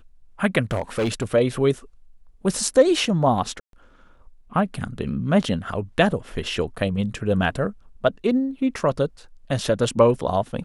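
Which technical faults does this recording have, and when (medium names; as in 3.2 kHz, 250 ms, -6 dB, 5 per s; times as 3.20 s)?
0.71–1.34 s: clipped -18.5 dBFS
3.60–3.73 s: dropout 132 ms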